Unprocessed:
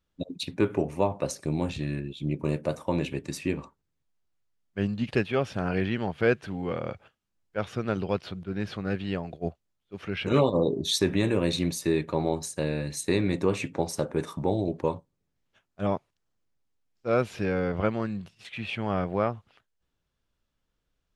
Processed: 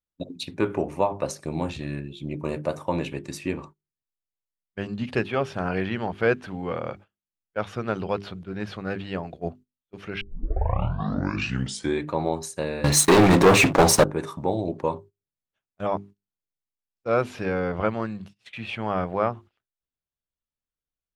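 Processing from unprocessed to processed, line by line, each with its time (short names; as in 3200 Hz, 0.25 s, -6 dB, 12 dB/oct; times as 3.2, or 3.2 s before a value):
10.21 tape start 1.86 s
12.84–14.04 sample leveller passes 5
whole clip: notches 50/100/150/200/250/300/350/400 Hz; gate -45 dBFS, range -17 dB; dynamic EQ 1000 Hz, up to +5 dB, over -42 dBFS, Q 0.87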